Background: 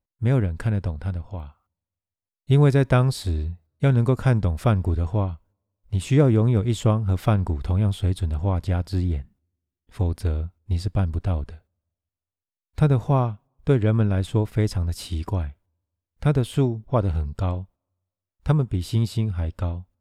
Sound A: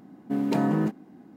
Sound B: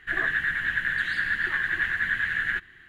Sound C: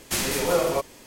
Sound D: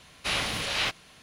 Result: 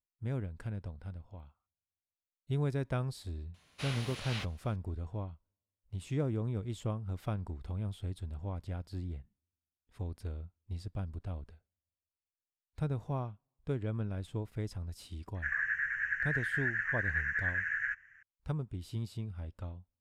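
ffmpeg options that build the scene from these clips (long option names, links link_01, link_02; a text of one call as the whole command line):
ffmpeg -i bed.wav -i cue0.wav -i cue1.wav -i cue2.wav -i cue3.wav -filter_complex "[0:a]volume=-16dB[link_01];[2:a]firequalizer=gain_entry='entry(110,0);entry(240,-16);entry(370,-24);entry(600,-11);entry(1500,9);entry(2500,5);entry(3600,-25);entry(5800,12);entry(11000,-15)':delay=0.05:min_phase=1[link_02];[4:a]atrim=end=1.22,asetpts=PTS-STARTPTS,volume=-13.5dB,afade=type=in:duration=0.004:curve=hsin,afade=type=out:start_time=1.216:duration=0.004:curve=hsin,adelay=3540[link_03];[link_02]atrim=end=2.88,asetpts=PTS-STARTPTS,volume=-15.5dB,afade=type=in:duration=0.004:curve=hsin,afade=type=out:start_time=2.876:duration=0.004:curve=hsin,adelay=15350[link_04];[link_01][link_03][link_04]amix=inputs=3:normalize=0" out.wav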